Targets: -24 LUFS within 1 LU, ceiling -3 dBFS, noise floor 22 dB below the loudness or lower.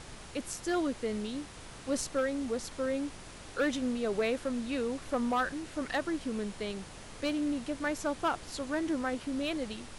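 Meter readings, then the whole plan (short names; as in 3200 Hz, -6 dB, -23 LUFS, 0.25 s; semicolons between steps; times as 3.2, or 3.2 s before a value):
clipped 0.6%; flat tops at -23.5 dBFS; noise floor -48 dBFS; noise floor target -56 dBFS; loudness -34.0 LUFS; peak -23.5 dBFS; loudness target -24.0 LUFS
-> clip repair -23.5 dBFS; noise print and reduce 8 dB; gain +10 dB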